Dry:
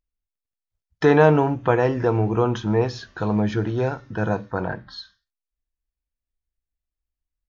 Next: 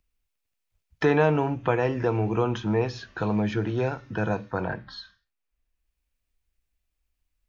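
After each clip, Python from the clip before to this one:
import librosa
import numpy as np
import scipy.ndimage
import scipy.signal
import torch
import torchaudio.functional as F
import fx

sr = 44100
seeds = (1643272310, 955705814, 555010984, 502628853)

y = fx.peak_eq(x, sr, hz=2500.0, db=6.0, octaves=0.5)
y = fx.band_squash(y, sr, depth_pct=40)
y = y * librosa.db_to_amplitude(-4.5)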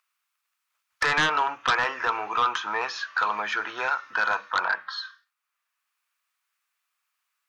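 y = fx.highpass_res(x, sr, hz=1200.0, q=3.4)
y = fx.fold_sine(y, sr, drive_db=10, ceiling_db=-8.5)
y = y * librosa.db_to_amplitude(-8.0)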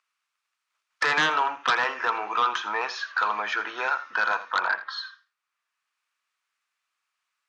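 y = fx.bandpass_edges(x, sr, low_hz=190.0, high_hz=7400.0)
y = y + 10.0 ** (-15.5 / 20.0) * np.pad(y, (int(83 * sr / 1000.0), 0))[:len(y)]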